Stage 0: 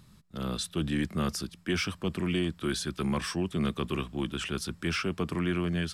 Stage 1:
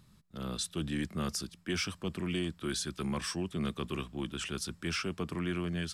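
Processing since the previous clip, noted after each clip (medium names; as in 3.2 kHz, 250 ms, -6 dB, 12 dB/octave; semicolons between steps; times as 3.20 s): dynamic bell 7.1 kHz, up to +6 dB, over -48 dBFS, Q 0.76; trim -5 dB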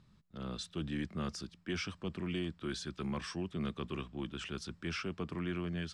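distance through air 97 m; trim -3 dB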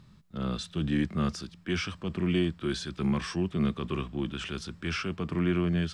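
harmonic-percussive split harmonic +8 dB; trim +3.5 dB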